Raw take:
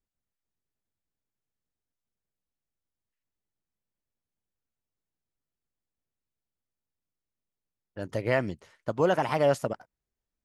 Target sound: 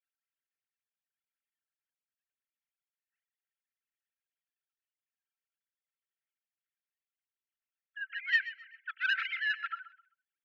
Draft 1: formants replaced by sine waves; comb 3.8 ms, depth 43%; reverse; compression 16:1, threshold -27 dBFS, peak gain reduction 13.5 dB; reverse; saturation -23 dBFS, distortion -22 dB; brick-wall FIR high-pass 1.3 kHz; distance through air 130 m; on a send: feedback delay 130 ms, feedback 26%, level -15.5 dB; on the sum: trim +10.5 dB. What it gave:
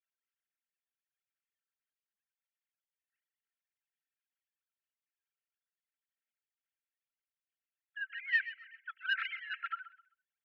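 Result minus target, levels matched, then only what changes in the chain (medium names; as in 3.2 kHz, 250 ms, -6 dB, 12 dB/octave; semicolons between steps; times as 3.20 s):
compression: peak gain reduction +9.5 dB
change: compression 16:1, threshold -17 dBFS, peak gain reduction 4 dB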